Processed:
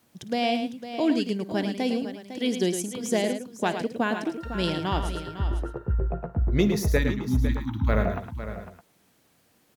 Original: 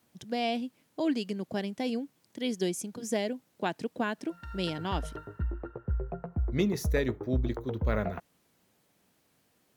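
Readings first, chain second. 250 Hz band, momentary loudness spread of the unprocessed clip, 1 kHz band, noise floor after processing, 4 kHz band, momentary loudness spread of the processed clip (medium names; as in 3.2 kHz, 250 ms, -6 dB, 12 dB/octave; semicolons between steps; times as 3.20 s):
+6.0 dB, 8 LU, +6.0 dB, -65 dBFS, +6.0 dB, 8 LU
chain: spectral selection erased 6.98–7.89 s, 340–790 Hz; multi-tap echo 55/108/504/613 ms -18/-8.5/-11.5/-17.5 dB; trim +5 dB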